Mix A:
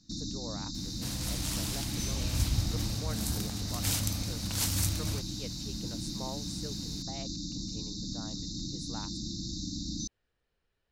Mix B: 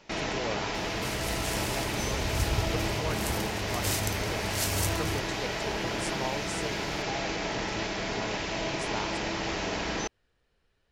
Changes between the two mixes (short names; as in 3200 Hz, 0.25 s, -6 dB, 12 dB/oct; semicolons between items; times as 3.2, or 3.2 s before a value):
speech +7.5 dB; first sound: remove brick-wall FIR band-stop 320–3600 Hz